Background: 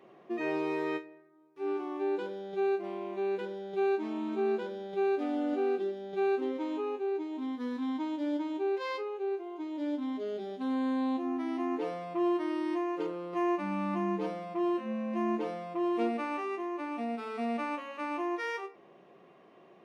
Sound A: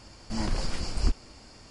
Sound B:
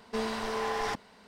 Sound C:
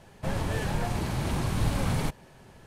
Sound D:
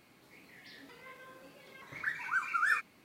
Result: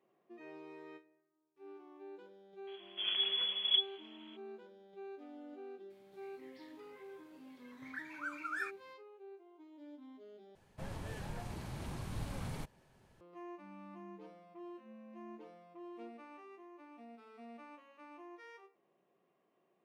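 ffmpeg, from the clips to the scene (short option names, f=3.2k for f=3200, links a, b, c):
-filter_complex "[0:a]volume=-19.5dB[a];[1:a]lowpass=f=2.9k:t=q:w=0.5098,lowpass=f=2.9k:t=q:w=0.6013,lowpass=f=2.9k:t=q:w=0.9,lowpass=f=2.9k:t=q:w=2.563,afreqshift=-3400[b];[a]asplit=2[c][d];[c]atrim=end=10.554[e];[3:a]atrim=end=2.66,asetpts=PTS-STARTPTS,volume=-14.5dB[f];[d]atrim=start=13.206[g];[b]atrim=end=1.7,asetpts=PTS-STARTPTS,volume=-7.5dB,afade=t=in:d=0.004:c=hsin,afade=t=out:st=1.696:d=0.004:c=hsin,adelay=2670[h];[4:a]atrim=end=3.04,asetpts=PTS-STARTPTS,volume=-10dB,afade=t=in:d=0.004:c=hsin,afade=t=out:st=3.036:d=0.004:c=hsin,adelay=5900[i];[e][f]acrossfade=d=0.004:c1=hsin:c2=hsin[j];[j][g]acrossfade=d=0.004:c1=hsin:c2=hsin[k];[k][h][i]amix=inputs=3:normalize=0"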